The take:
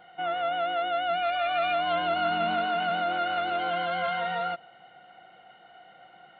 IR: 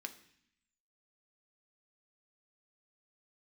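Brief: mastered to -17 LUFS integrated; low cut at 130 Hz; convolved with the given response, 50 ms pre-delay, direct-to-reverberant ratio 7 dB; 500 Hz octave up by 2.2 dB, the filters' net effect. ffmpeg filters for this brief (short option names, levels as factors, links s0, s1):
-filter_complex "[0:a]highpass=130,equalizer=f=500:t=o:g=4,asplit=2[s0][s1];[1:a]atrim=start_sample=2205,adelay=50[s2];[s1][s2]afir=irnorm=-1:irlink=0,volume=0.596[s3];[s0][s3]amix=inputs=2:normalize=0,volume=2.82"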